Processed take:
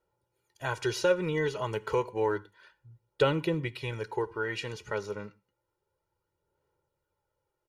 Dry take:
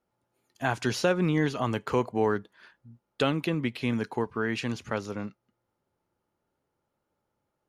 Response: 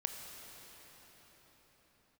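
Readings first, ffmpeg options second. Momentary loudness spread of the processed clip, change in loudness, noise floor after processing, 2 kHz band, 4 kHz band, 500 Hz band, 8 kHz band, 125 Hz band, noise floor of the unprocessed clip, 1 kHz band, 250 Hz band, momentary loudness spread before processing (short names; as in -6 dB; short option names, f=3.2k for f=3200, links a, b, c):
10 LU, -2.5 dB, -84 dBFS, -2.0 dB, -2.0 dB, 0.0 dB, -2.5 dB, -4.0 dB, -81 dBFS, -2.5 dB, -7.0 dB, 8 LU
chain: -filter_complex "[0:a]aecho=1:1:2.1:0.89,flanger=delay=0:depth=4.8:regen=56:speed=0.3:shape=sinusoidal,asplit=2[a][b];[1:a]atrim=start_sample=2205,afade=t=out:st=0.29:d=0.01,atrim=end_sample=13230,asetrate=83790,aresample=44100[c];[b][c]afir=irnorm=-1:irlink=0,volume=-4.5dB[d];[a][d]amix=inputs=2:normalize=0,volume=-3dB"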